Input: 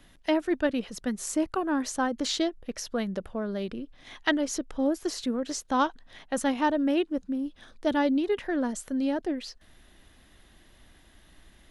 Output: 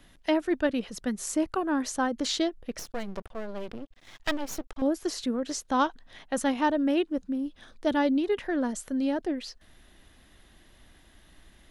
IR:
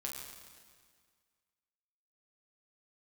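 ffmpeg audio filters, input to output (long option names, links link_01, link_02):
-filter_complex "[0:a]asettb=1/sr,asplit=3[link_01][link_02][link_03];[link_01]atrim=end=2.794[link_04];[link_02]atrim=start=2.79:end=4.82,asetpts=PTS-STARTPTS,afade=type=in:duration=0.004:curve=qsin,afade=type=out:start_time=2.026:duration=0.004:curve=qsin,aeval=exprs='max(val(0),0)':channel_layout=same[link_05];[link_03]atrim=start=4.816[link_06];[link_04][link_05]acrossfade=duration=0.004:curve1=hsin:curve2=qsin[link_07];[link_07][link_06]acrossfade=duration=0.004:curve1=qsin:curve2=hsin"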